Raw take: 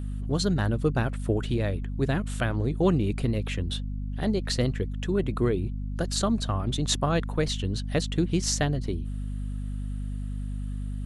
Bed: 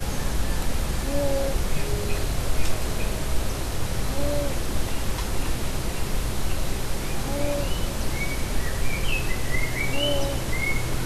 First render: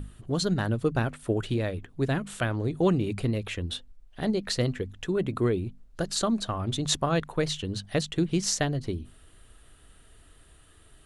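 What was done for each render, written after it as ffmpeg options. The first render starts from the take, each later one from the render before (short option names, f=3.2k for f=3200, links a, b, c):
-af "bandreject=f=50:t=h:w=6,bandreject=f=100:t=h:w=6,bandreject=f=150:t=h:w=6,bandreject=f=200:t=h:w=6,bandreject=f=250:t=h:w=6"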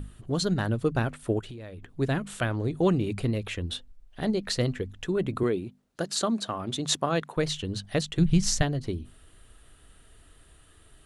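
-filter_complex "[0:a]asettb=1/sr,asplit=3[a][b][c];[a]atrim=end=1.394[d];[b]atrim=start=1.39:end=1.91,asetpts=PTS-STARTPTS,afade=t=in:d=0.004:c=qsin,afade=t=out:st=0.516:d=0.004:c=qsin,acompressor=threshold=-38dB:ratio=8:attack=3.2:release=140:knee=1:detection=peak[e];[c]atrim=start=1.906[f];[d][e]acrossfade=d=0.004:c1=hsin:c2=qsin[g];[g][f]acrossfade=d=0.004:c1=qsin:c2=hsin,asettb=1/sr,asplit=3[h][i][j];[h]atrim=end=5.434[k];[i]atrim=start=5.43:end=7.37,asetpts=PTS-STARTPTS,afade=t=in:d=0.004:c=qsin,afade=t=out:st=1.936:d=0.004:c=qsin,highpass=170[l];[j]atrim=start=7.366[m];[k][l]acrossfade=d=0.004:c1=hsin:c2=qsin[n];[n][m]acrossfade=d=0.004:c1=qsin:c2=hsin,asplit=3[o][p][q];[o]afade=t=out:st=8.18:d=0.02[r];[p]asubboost=boost=11.5:cutoff=100,afade=t=in:st=8.18:d=0.02,afade=t=out:st=8.61:d=0.02[s];[q]afade=t=in:st=8.61:d=0.02[t];[r][s][t]amix=inputs=3:normalize=0"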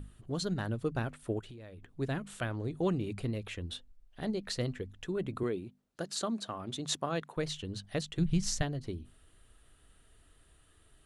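-af "volume=-7.5dB"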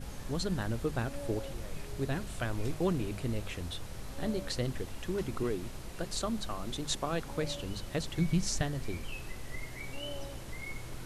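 -filter_complex "[1:a]volume=-16.5dB[a];[0:a][a]amix=inputs=2:normalize=0"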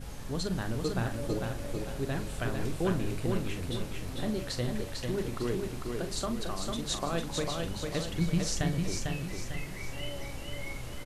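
-filter_complex "[0:a]asplit=2[a][b];[b]adelay=42,volume=-9.5dB[c];[a][c]amix=inputs=2:normalize=0,asplit=2[d][e];[e]aecho=0:1:449|898|1347|1796|2245:0.631|0.259|0.106|0.0435|0.0178[f];[d][f]amix=inputs=2:normalize=0"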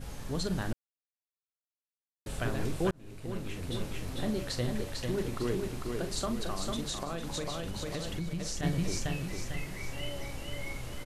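-filter_complex "[0:a]asplit=3[a][b][c];[a]afade=t=out:st=6.84:d=0.02[d];[b]acompressor=threshold=-31dB:ratio=6:attack=3.2:release=140:knee=1:detection=peak,afade=t=in:st=6.84:d=0.02,afade=t=out:st=8.62:d=0.02[e];[c]afade=t=in:st=8.62:d=0.02[f];[d][e][f]amix=inputs=3:normalize=0,asplit=4[g][h][i][j];[g]atrim=end=0.73,asetpts=PTS-STARTPTS,afade=t=out:st=0.726:d=0.004:c=hsin[k];[h]atrim=start=0.73:end=2.26,asetpts=PTS-STARTPTS,volume=0[l];[i]atrim=start=2.26:end=2.91,asetpts=PTS-STARTPTS,afade=t=in:d=0.004:c=hsin,afade=t=out:st=0.646:d=0.004:c=hsin[m];[j]atrim=start=2.91,asetpts=PTS-STARTPTS,afade=t=in:d=0.95[n];[k][l][m][n]concat=n=4:v=0:a=1"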